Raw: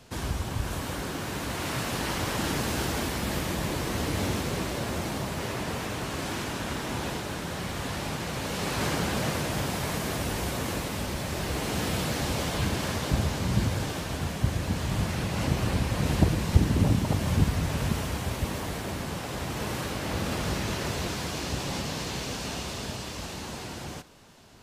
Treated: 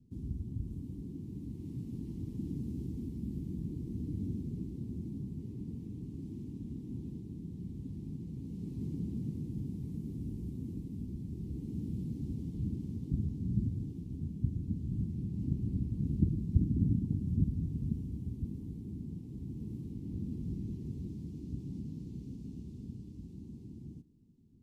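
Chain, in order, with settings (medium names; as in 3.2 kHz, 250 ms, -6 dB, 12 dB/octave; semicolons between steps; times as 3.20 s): inverse Chebyshev low-pass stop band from 560 Hz, stop band 40 dB; tilt EQ +2 dB/octave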